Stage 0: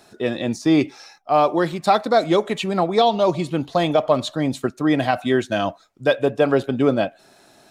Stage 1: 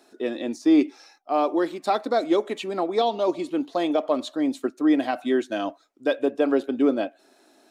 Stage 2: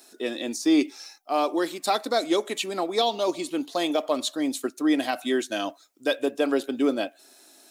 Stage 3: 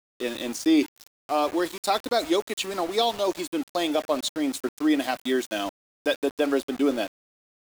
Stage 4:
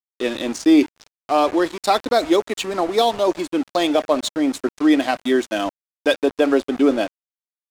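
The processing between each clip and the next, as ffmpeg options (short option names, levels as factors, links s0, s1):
-af "lowshelf=f=200:t=q:w=3:g=-12,volume=0.422"
-af "crystalizer=i=5:c=0,volume=0.708"
-af "aeval=exprs='val(0)*gte(abs(val(0)),0.02)':c=same"
-af "adynamicsmooth=sensitivity=6:basefreq=4500,adynamicequalizer=threshold=0.00631:dfrequency=3700:dqfactor=0.76:tfrequency=3700:tqfactor=0.76:attack=5:release=100:ratio=0.375:range=2.5:mode=cutabove:tftype=bell,volume=2.24"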